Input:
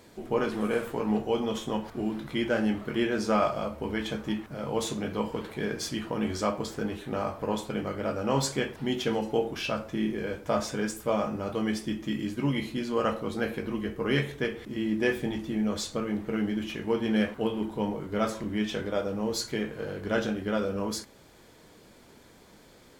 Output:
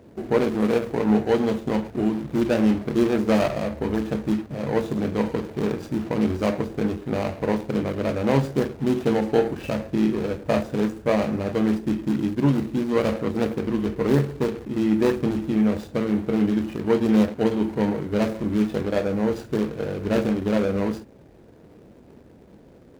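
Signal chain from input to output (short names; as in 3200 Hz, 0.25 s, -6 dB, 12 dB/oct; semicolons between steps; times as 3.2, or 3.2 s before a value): median filter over 41 samples; HPF 41 Hz; gain +8.5 dB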